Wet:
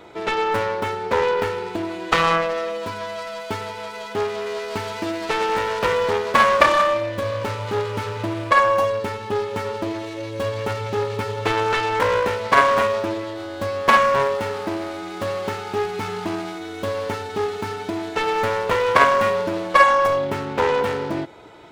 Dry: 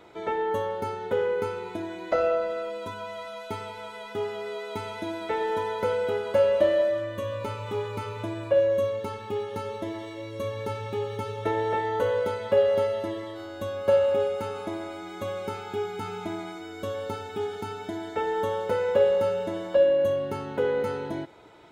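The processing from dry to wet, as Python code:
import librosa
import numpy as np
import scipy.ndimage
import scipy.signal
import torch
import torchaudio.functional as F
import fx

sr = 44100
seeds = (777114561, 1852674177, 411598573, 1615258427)

y = fx.self_delay(x, sr, depth_ms=0.94)
y = y * 10.0 ** (7.5 / 20.0)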